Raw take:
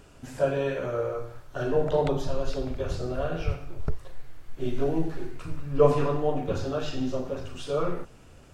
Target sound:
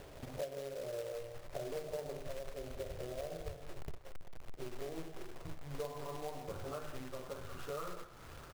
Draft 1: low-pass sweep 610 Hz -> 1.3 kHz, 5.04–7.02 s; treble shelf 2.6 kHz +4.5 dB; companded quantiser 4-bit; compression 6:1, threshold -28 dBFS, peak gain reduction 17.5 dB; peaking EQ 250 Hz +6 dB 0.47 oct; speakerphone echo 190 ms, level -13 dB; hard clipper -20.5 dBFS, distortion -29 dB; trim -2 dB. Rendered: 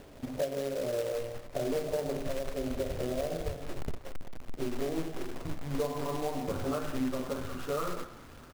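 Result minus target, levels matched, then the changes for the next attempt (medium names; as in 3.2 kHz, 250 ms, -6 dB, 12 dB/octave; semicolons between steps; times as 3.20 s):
compression: peak gain reduction -9 dB; 250 Hz band +5.0 dB
change: compression 6:1, threshold -38.5 dBFS, peak gain reduction 26.5 dB; change: peaking EQ 250 Hz -5.5 dB 0.47 oct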